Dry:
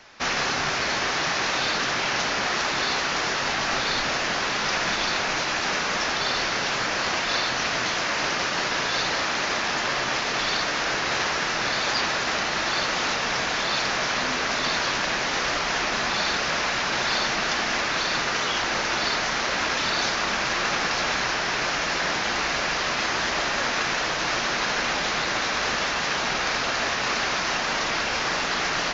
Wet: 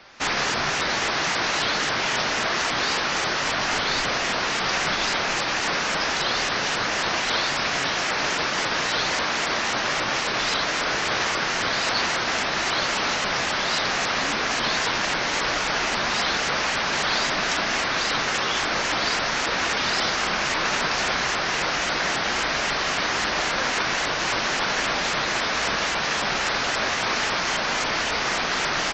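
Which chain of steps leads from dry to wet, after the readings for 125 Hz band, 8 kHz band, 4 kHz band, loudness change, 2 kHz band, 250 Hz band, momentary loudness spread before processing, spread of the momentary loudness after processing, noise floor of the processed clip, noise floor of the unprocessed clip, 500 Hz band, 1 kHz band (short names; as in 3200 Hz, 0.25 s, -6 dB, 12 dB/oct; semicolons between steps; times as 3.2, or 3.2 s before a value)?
+1.0 dB, +1.0 dB, +1.0 dB, +1.0 dB, +1.0 dB, +1.0 dB, 1 LU, 1 LU, -25 dBFS, -27 dBFS, +1.0 dB, +1.0 dB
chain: shaped vibrato saw up 3.7 Hz, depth 250 cents; gain +1 dB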